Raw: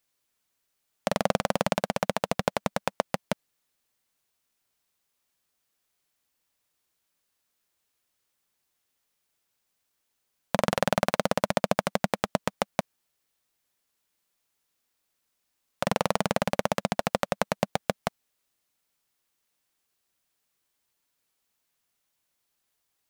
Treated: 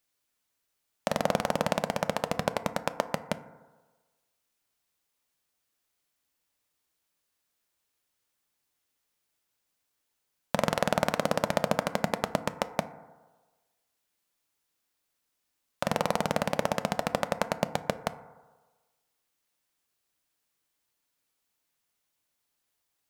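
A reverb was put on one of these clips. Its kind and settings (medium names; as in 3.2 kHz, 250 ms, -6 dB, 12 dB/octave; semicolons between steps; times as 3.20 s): FDN reverb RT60 1.3 s, low-frequency decay 0.8×, high-frequency decay 0.25×, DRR 11 dB; trim -2 dB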